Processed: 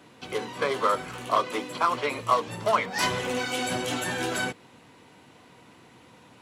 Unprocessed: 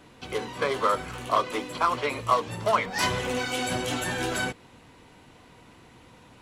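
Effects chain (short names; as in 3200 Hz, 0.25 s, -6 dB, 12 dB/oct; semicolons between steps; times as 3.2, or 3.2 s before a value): HPF 120 Hz 12 dB/oct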